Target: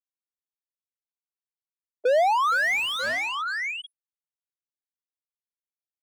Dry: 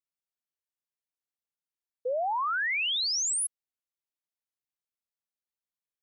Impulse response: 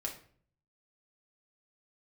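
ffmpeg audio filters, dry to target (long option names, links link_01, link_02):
-filter_complex "[0:a]aecho=1:1:463|926|1389|1852|2315:0.178|0.0889|0.0445|0.0222|0.0111,acrossover=split=2500[link_01][link_02];[link_02]acompressor=threshold=-38dB:ratio=4:attack=1:release=60[link_03];[link_01][link_03]amix=inputs=2:normalize=0,afftfilt=real='re*gte(hypot(re,im),0.0355)':imag='im*gte(hypot(re,im),0.0355)':win_size=1024:overlap=0.75,highpass=330,equalizer=frequency=440:width_type=q:width=4:gain=3,equalizer=frequency=640:width_type=q:width=4:gain=5,equalizer=frequency=1000:width_type=q:width=4:gain=-5,equalizer=frequency=2200:width_type=q:width=4:gain=4,lowpass=frequency=3200:width=0.5412,lowpass=frequency=3200:width=1.3066,asplit=2[link_04][link_05];[link_05]highpass=frequency=720:poles=1,volume=32dB,asoftclip=type=tanh:threshold=-21dB[link_06];[link_04][link_06]amix=inputs=2:normalize=0,lowpass=frequency=1300:poles=1,volume=-6dB,volume=6dB"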